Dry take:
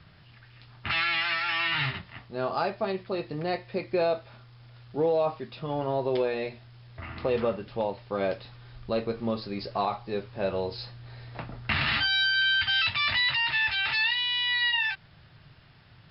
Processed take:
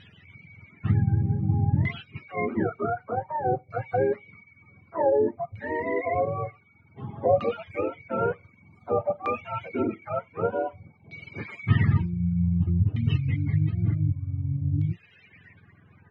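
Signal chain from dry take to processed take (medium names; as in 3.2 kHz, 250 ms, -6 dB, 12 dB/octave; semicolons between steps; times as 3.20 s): spectrum inverted on a logarithmic axis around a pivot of 520 Hz; reverb removal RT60 0.7 s; LFO low-pass saw down 0.54 Hz 670–3400 Hz; trim +2.5 dB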